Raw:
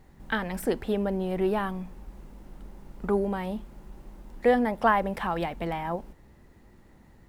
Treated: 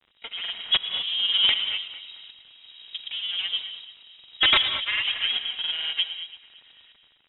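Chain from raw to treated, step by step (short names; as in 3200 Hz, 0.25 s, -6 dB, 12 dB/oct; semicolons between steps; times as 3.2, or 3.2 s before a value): minimum comb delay 4.2 ms; resonant low shelf 390 Hz -13 dB, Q 3; AGC gain up to 10 dB; grains, grains 20/s, pitch spread up and down by 0 st; tremolo saw up 1.3 Hz, depth 80%; wrapped overs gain 9.5 dB; air absorption 250 m; echo with dull and thin repeats by turns 0.112 s, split 1400 Hz, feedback 67%, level -13 dB; non-linear reverb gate 0.25 s rising, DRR 9.5 dB; crackle 59/s -40 dBFS; inverted band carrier 3800 Hz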